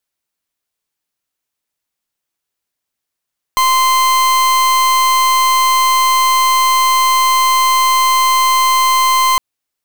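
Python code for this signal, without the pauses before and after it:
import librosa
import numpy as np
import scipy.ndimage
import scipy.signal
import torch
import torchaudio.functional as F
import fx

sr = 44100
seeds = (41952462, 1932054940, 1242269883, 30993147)

y = fx.pulse(sr, length_s=5.81, hz=1040.0, level_db=-11.5, duty_pct=41)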